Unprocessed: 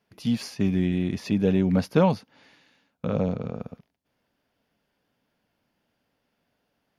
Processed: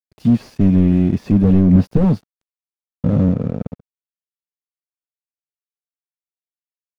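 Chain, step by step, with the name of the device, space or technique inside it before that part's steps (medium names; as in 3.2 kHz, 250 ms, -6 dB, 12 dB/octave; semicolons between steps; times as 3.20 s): early transistor amplifier (crossover distortion -46 dBFS; slew-rate limiter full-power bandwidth 20 Hz); bass shelf 490 Hz +11 dB; trim +3.5 dB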